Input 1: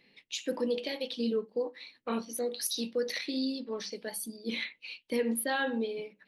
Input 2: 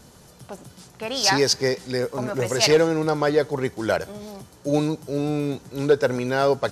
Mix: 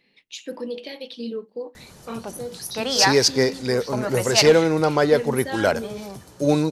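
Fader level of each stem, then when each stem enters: 0.0, +2.5 decibels; 0.00, 1.75 seconds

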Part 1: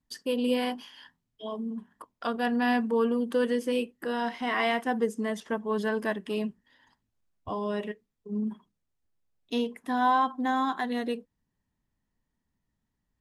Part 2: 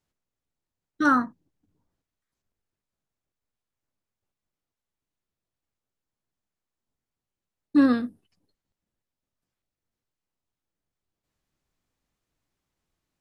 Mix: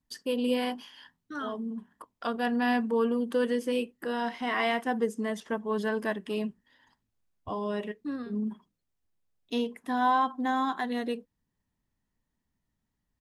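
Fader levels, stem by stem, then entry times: −1.0, −16.5 decibels; 0.00, 0.30 seconds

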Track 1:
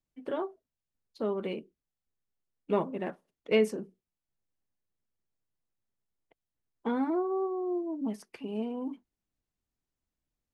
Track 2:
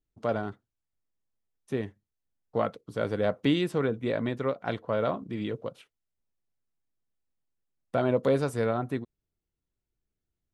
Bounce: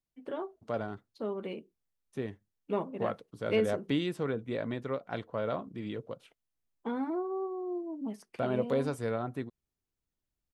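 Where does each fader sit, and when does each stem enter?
−4.0, −5.5 decibels; 0.00, 0.45 seconds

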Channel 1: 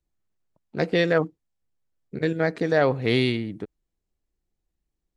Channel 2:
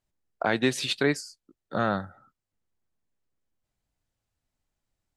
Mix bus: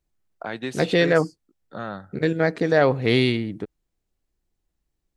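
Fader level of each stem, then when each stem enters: +2.5, −6.5 decibels; 0.00, 0.00 seconds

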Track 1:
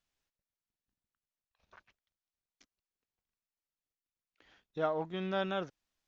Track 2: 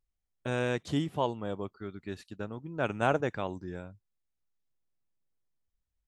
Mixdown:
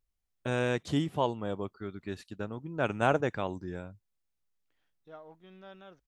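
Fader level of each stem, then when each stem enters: −16.5, +1.0 decibels; 0.30, 0.00 seconds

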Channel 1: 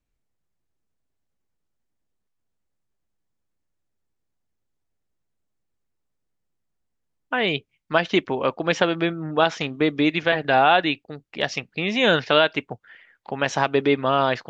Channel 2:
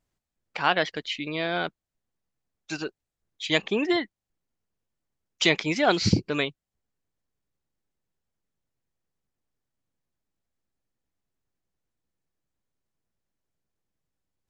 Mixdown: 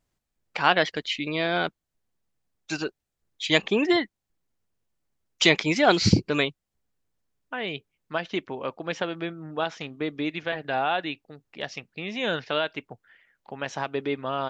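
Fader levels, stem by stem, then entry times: −9.0, +2.5 decibels; 0.20, 0.00 seconds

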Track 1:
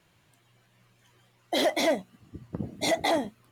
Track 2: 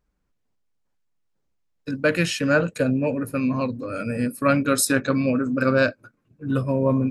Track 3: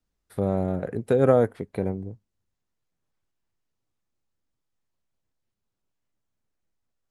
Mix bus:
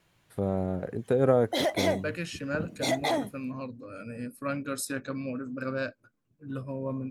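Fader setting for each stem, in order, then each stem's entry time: −2.5, −13.0, −4.0 decibels; 0.00, 0.00, 0.00 seconds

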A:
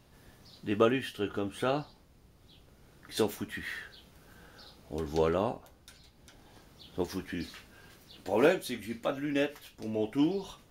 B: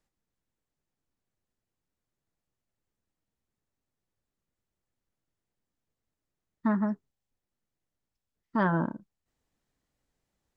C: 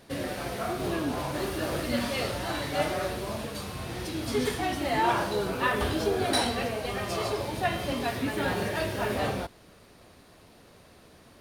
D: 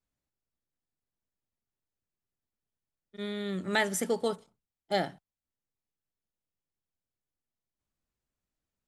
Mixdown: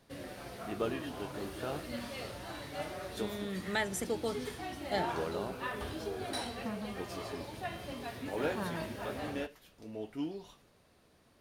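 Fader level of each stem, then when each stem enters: −10.0, −14.0, −12.0, −5.5 decibels; 0.00, 0.00, 0.00, 0.00 seconds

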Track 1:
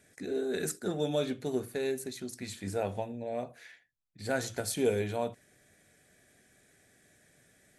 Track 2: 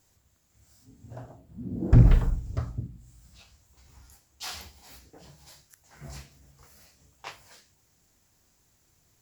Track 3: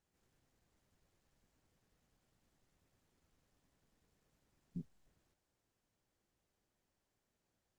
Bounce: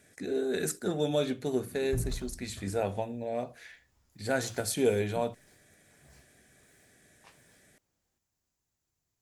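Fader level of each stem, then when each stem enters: +2.0, −17.5, +1.0 decibels; 0.00, 0.00, 0.40 seconds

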